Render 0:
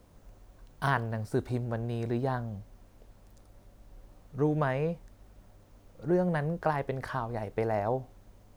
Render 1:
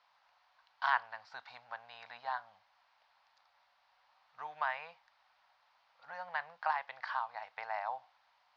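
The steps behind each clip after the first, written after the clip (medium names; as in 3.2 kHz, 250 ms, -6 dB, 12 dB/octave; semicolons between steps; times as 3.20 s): elliptic band-pass 840–4700 Hz, stop band 40 dB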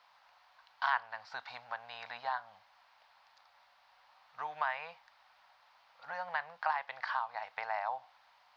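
compression 1.5:1, threshold -44 dBFS, peak gain reduction 7.5 dB; trim +6 dB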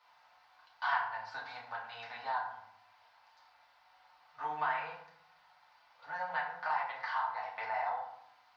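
FDN reverb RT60 0.71 s, low-frequency decay 1.6×, high-frequency decay 0.6×, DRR -6 dB; trim -6.5 dB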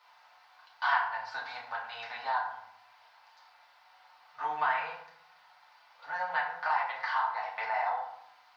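bass shelf 330 Hz -10 dB; trim +5.5 dB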